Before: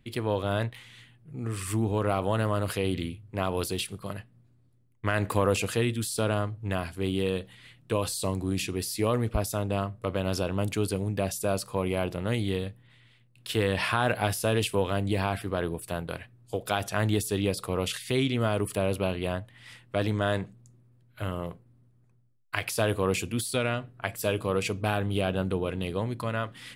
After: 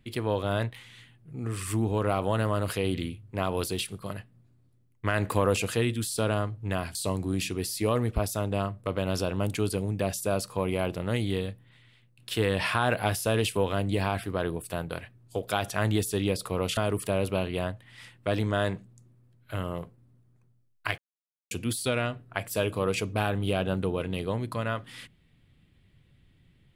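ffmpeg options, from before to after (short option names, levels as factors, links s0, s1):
-filter_complex "[0:a]asplit=5[s0][s1][s2][s3][s4];[s0]atrim=end=6.952[s5];[s1]atrim=start=8.128:end=17.952[s6];[s2]atrim=start=18.448:end=22.66,asetpts=PTS-STARTPTS,afade=t=out:st=4.208:d=0.004:c=hsin[s7];[s3]atrim=start=22.66:end=23.19,asetpts=PTS-STARTPTS,volume=0[s8];[s4]atrim=start=23.19,asetpts=PTS-STARTPTS,afade=t=in:d=0.004:c=hsin[s9];[s5][s6]acrossfade=d=0.004:c1=hsin:c2=hsin[s10];[s7][s8][s9]concat=n=3:v=0:a=1[s11];[s10][s11]acrossfade=d=0.004:c1=hsin:c2=hsin"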